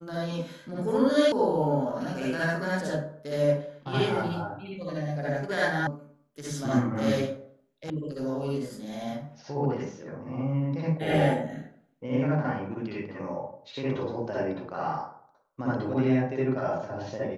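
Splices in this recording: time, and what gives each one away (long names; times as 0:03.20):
0:01.32: cut off before it has died away
0:05.87: cut off before it has died away
0:07.90: cut off before it has died away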